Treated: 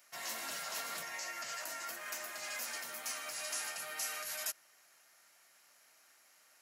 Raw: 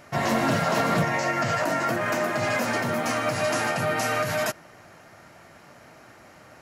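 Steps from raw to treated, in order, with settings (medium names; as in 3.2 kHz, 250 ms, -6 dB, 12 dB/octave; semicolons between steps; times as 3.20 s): high-pass 130 Hz; differentiator; trim -4 dB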